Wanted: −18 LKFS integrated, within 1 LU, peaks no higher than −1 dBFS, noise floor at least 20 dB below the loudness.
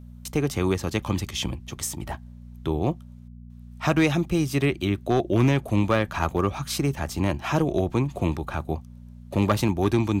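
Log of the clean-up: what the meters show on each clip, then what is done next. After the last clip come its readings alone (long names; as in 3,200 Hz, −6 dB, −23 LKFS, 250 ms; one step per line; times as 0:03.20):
share of clipped samples 0.3%; peaks flattened at −12.5 dBFS; mains hum 60 Hz; hum harmonics up to 240 Hz; level of the hum −42 dBFS; integrated loudness −25.5 LKFS; sample peak −12.5 dBFS; target loudness −18.0 LKFS
→ clipped peaks rebuilt −12.5 dBFS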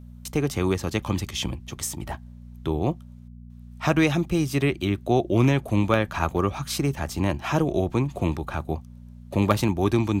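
share of clipped samples 0.0%; mains hum 60 Hz; hum harmonics up to 240 Hz; level of the hum −41 dBFS
→ hum removal 60 Hz, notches 4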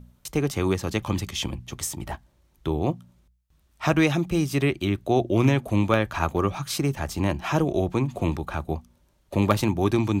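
mains hum none found; integrated loudness −25.5 LKFS; sample peak −4.5 dBFS; target loudness −18.0 LKFS
→ level +7.5 dB
brickwall limiter −1 dBFS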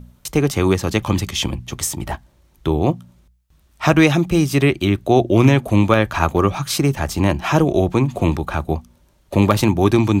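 integrated loudness −18.0 LKFS; sample peak −1.0 dBFS; background noise floor −56 dBFS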